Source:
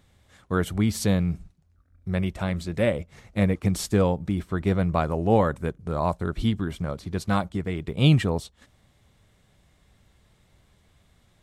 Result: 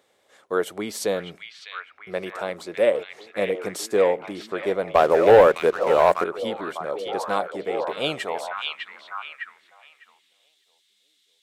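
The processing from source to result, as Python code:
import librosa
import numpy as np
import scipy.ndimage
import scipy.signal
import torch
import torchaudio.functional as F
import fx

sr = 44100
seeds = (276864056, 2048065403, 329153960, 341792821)

y = fx.echo_stepped(x, sr, ms=603, hz=2700.0, octaves=-0.7, feedback_pct=70, wet_db=-1.0)
y = fx.filter_sweep_highpass(y, sr, from_hz=460.0, to_hz=3700.0, start_s=7.78, end_s=10.6, q=2.0)
y = fx.leveller(y, sr, passes=2, at=(4.95, 6.24))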